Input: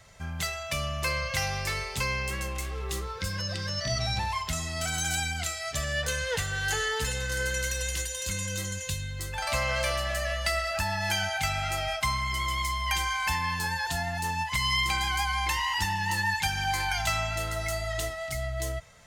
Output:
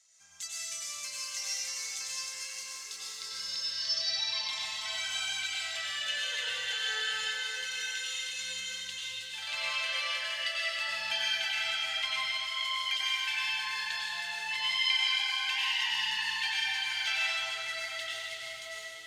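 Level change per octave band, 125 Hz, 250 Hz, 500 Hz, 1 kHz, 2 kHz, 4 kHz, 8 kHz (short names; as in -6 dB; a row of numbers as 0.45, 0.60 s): under -30 dB, under -25 dB, -15.5 dB, -11.0 dB, -2.5 dB, +2.5 dB, -4.5 dB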